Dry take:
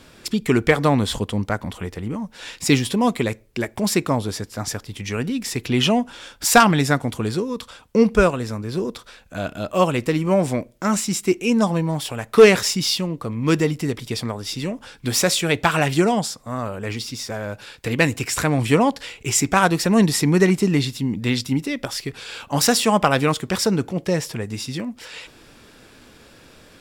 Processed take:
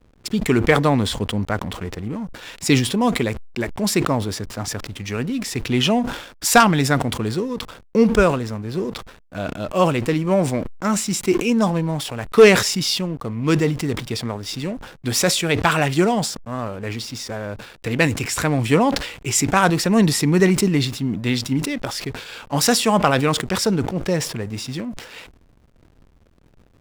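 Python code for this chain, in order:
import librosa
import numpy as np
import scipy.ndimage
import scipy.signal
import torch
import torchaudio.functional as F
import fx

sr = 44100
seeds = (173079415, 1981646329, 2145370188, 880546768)

y = fx.backlash(x, sr, play_db=-35.0)
y = fx.sustainer(y, sr, db_per_s=82.0)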